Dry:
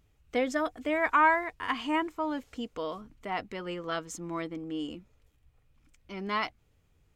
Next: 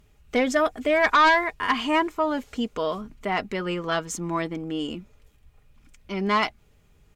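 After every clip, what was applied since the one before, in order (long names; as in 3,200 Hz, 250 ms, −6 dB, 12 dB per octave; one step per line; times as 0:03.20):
comb filter 4.9 ms, depth 34%
in parallel at −7.5 dB: sine wavefolder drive 8 dB, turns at −12 dBFS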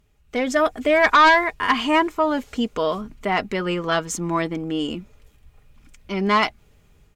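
automatic gain control gain up to 9 dB
level −4.5 dB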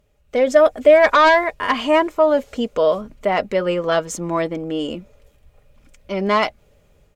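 parametric band 560 Hz +14 dB 0.44 octaves
level −1 dB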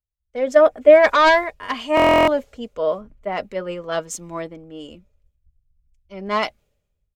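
buffer that repeats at 0:01.95, samples 1,024, times 13
multiband upward and downward expander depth 100%
level −4 dB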